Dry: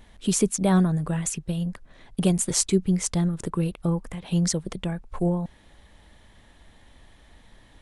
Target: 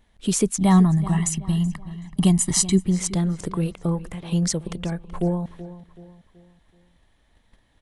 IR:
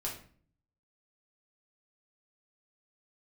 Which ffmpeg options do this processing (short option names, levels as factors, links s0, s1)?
-filter_complex "[0:a]agate=range=0.282:threshold=0.00447:ratio=16:detection=peak,asettb=1/sr,asplit=3[s0][s1][s2];[s0]atrim=end=0.574[s3];[s1]atrim=start=0.57:end=2.79,asetpts=PTS-STARTPTS,afade=t=in:d=0.004:c=qsin,afade=t=out:st=2.216:d=0.004:c=qsin,aecho=1:1:1:0.83,atrim=end_sample=97902[s4];[s2]atrim=start=2.786[s5];[s3][s4]acrossfade=d=0.004:c1=hsin:c2=qsin[s6];[s6][s5]acrossfade=d=0.004:c1=qsin:c2=hsin,asplit=2[s7][s8];[s8]adelay=378,lowpass=f=3200:p=1,volume=0.178,asplit=2[s9][s10];[s10]adelay=378,lowpass=f=3200:p=1,volume=0.42,asplit=2[s11][s12];[s12]adelay=378,lowpass=f=3200:p=1,volume=0.42,asplit=2[s13][s14];[s14]adelay=378,lowpass=f=3200:p=1,volume=0.42[s15];[s7][s9][s11][s13][s15]amix=inputs=5:normalize=0,volume=1.12"